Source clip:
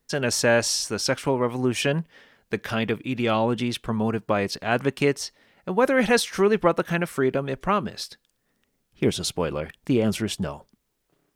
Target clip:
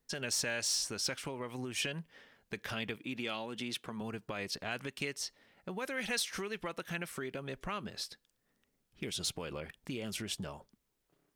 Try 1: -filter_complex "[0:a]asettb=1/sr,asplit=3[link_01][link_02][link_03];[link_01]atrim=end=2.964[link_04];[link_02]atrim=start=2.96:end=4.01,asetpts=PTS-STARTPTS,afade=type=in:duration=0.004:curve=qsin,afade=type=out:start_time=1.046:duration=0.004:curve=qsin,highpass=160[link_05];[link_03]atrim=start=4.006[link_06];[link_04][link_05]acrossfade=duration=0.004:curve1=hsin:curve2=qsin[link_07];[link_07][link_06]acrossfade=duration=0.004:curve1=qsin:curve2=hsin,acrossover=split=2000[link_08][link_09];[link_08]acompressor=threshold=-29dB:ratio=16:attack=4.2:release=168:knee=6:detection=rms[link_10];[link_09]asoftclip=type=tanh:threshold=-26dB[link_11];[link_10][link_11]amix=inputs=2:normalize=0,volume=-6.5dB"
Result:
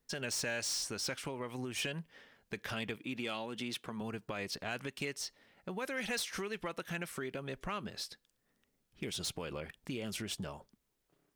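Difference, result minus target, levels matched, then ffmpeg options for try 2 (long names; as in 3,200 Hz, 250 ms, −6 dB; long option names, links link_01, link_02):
soft clipping: distortion +11 dB
-filter_complex "[0:a]asettb=1/sr,asplit=3[link_01][link_02][link_03];[link_01]atrim=end=2.964[link_04];[link_02]atrim=start=2.96:end=4.01,asetpts=PTS-STARTPTS,afade=type=in:duration=0.004:curve=qsin,afade=type=out:start_time=1.046:duration=0.004:curve=qsin,highpass=160[link_05];[link_03]atrim=start=4.006[link_06];[link_04][link_05]acrossfade=duration=0.004:curve1=hsin:curve2=qsin[link_07];[link_07][link_06]acrossfade=duration=0.004:curve1=qsin:curve2=hsin,acrossover=split=2000[link_08][link_09];[link_08]acompressor=threshold=-29dB:ratio=16:attack=4.2:release=168:knee=6:detection=rms[link_10];[link_09]asoftclip=type=tanh:threshold=-17dB[link_11];[link_10][link_11]amix=inputs=2:normalize=0,volume=-6.5dB"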